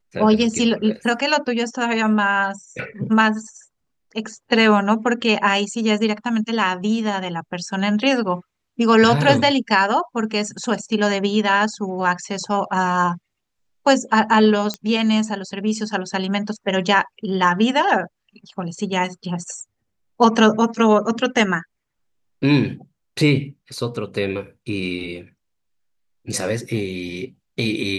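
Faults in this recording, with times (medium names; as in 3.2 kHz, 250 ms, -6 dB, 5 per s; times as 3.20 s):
14.74 s: pop -11 dBFS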